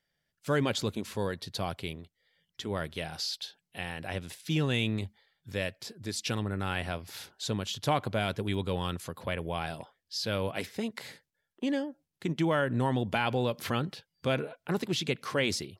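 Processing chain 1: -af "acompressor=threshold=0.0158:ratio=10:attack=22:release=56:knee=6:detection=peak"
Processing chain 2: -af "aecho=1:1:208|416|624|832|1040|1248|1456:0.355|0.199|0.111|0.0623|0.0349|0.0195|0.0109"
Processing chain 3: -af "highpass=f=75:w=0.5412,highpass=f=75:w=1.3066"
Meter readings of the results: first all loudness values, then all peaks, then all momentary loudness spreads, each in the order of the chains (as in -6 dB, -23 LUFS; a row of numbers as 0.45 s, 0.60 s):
-38.0 LUFS, -32.0 LUFS, -32.5 LUFS; -19.0 dBFS, -13.0 dBFS, -12.0 dBFS; 7 LU, 10 LU, 11 LU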